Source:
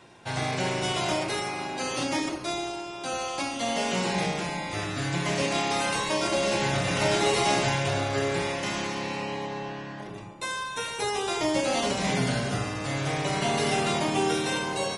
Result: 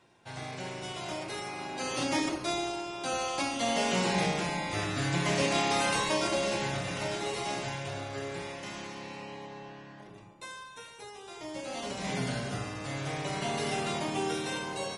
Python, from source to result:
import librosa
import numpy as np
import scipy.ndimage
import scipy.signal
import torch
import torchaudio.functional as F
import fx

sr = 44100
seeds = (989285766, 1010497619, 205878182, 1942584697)

y = fx.gain(x, sr, db=fx.line((0.99, -11.0), (2.19, -1.0), (6.03, -1.0), (7.18, -10.5), (10.4, -10.5), (11.18, -18.5), (12.18, -6.5)))